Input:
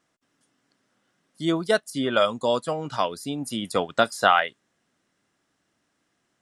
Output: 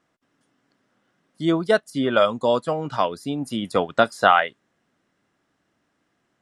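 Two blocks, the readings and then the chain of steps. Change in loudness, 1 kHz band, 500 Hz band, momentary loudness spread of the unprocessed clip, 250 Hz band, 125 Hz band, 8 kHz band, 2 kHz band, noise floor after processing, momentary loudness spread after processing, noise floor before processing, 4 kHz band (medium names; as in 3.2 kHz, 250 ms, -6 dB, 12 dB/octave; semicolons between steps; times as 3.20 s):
+2.5 dB, +3.0 dB, +3.5 dB, 10 LU, +3.5 dB, +3.5 dB, -5.0 dB, +2.0 dB, -72 dBFS, 10 LU, -74 dBFS, -1.0 dB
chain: treble shelf 3.9 kHz -10.5 dB; trim +3.5 dB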